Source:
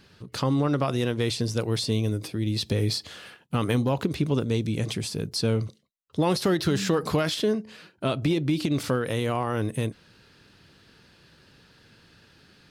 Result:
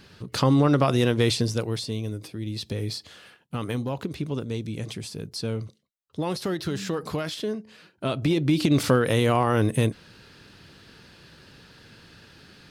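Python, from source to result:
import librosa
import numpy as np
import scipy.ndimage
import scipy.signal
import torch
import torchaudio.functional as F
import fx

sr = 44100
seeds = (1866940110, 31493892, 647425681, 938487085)

y = fx.gain(x, sr, db=fx.line((1.32, 4.5), (1.89, -5.0), (7.66, -5.0), (8.76, 5.5)))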